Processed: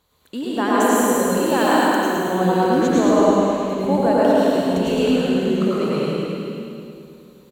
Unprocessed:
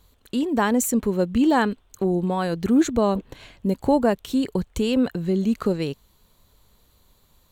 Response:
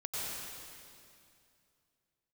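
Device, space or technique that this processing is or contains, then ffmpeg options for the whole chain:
swimming-pool hall: -filter_complex "[0:a]highpass=frequency=270:poles=1,asettb=1/sr,asplit=3[link_01][link_02][link_03];[link_01]atrim=end=1.164[link_04];[link_02]atrim=start=1.16:end=2.17,asetpts=PTS-STARTPTS,afade=type=in:duration=0.004:curve=qsin,afade=type=out:start_time=1.006:duration=0.004:curve=qsin,aemphasis=mode=production:type=bsi[link_05];[link_03]atrim=start=2.166[link_06];[link_04][link_05]acrossfade=duration=0.004:curve1=hsin:curve2=qsin[link_07];[link_07][link_06]acrossfade=duration=0.004:curve1=qsin:curve2=hsin,aecho=1:1:108|216|324|432|540|648|756|864|972:0.596|0.357|0.214|0.129|0.0772|0.0463|0.0278|0.0167|0.01[link_08];[1:a]atrim=start_sample=2205[link_09];[link_08][link_09]afir=irnorm=-1:irlink=0,highshelf=frequency=4000:gain=-6,volume=2.5dB"

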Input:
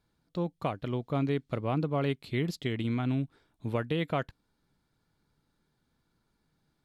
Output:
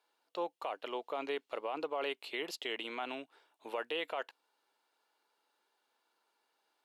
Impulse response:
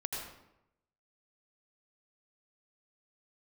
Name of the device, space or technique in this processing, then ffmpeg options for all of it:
laptop speaker: -af "highpass=frequency=430:width=0.5412,highpass=frequency=430:width=1.3066,equalizer=frequency=890:width_type=o:width=0.57:gain=5.5,equalizer=frequency=2800:width_type=o:width=0.22:gain=9,alimiter=level_in=2.5dB:limit=-24dB:level=0:latency=1:release=27,volume=-2.5dB"

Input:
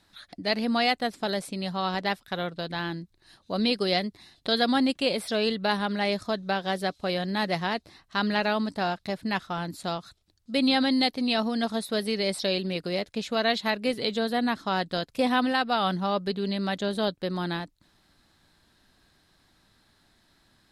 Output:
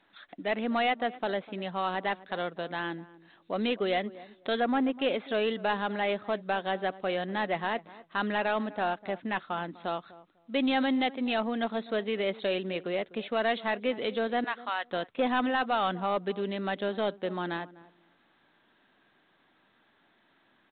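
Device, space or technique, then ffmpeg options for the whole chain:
telephone: -filter_complex "[0:a]asettb=1/sr,asplit=3[link_01][link_02][link_03];[link_01]atrim=end=4.604[link_04];[link_02]atrim=start=4.6:end=5,asetpts=PTS-STARTPTS,afade=type=in:duration=0.004:curve=qsin,afade=type=out:start_time=0.396:duration=0.004:curve=qsin,lowpass=1800[link_05];[link_03]atrim=start=4.996[link_06];[link_04][link_05]acrossfade=duration=0.004:curve1=hsin:curve2=qsin[link_07];[link_07][link_06]acrossfade=duration=0.004:curve1=qsin:curve2=hsin,asettb=1/sr,asplit=3[link_08][link_09][link_10];[link_08]atrim=end=14.444[link_11];[link_09]atrim=start=14.44:end=14.89,asetpts=PTS-STARTPTS,afade=type=in:duration=0.004:curve=qsin,afade=type=out:start_time=0.446:duration=0.004:curve=qsin,highpass=970[link_12];[link_10]atrim=start=14.886[link_13];[link_11][link_12]acrossfade=duration=0.004:curve1=hsin:curve2=qsin[link_14];[link_14][link_13]acrossfade=duration=0.004:curve1=qsin:curve2=hsin,highpass=260,lowpass=3600,asplit=2[link_15][link_16];[link_16]adelay=249,lowpass=frequency=930:poles=1,volume=-18dB,asplit=2[link_17][link_18];[link_18]adelay=249,lowpass=frequency=930:poles=1,volume=0.19[link_19];[link_15][link_17][link_19]amix=inputs=3:normalize=0,asoftclip=type=tanh:threshold=-18dB" -ar 8000 -c:a pcm_mulaw

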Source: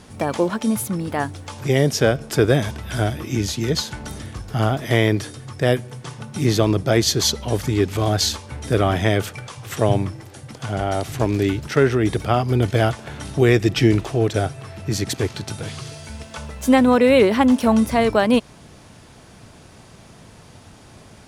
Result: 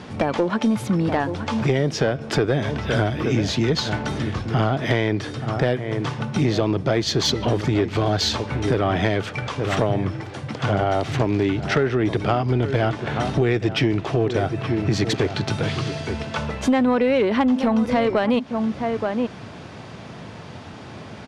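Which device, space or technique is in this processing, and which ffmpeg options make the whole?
AM radio: -filter_complex "[0:a]highpass=100,lowpass=3800,asplit=2[link_01][link_02];[link_02]adelay=874.6,volume=-14dB,highshelf=frequency=4000:gain=-19.7[link_03];[link_01][link_03]amix=inputs=2:normalize=0,acompressor=threshold=-24dB:ratio=6,asoftclip=type=tanh:threshold=-18dB,volume=8.5dB"

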